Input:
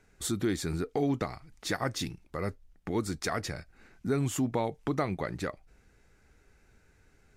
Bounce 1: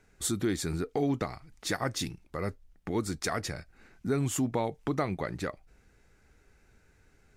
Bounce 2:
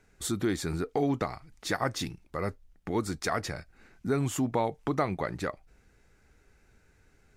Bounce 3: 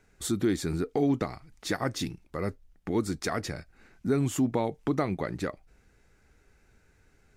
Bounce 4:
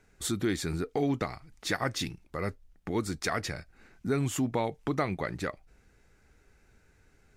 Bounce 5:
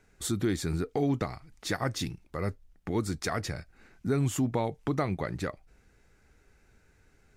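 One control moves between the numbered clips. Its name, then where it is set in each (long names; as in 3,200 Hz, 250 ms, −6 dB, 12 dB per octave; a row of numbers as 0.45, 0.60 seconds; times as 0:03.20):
dynamic equaliser, frequency: 9,000, 940, 280, 2,400, 100 Hertz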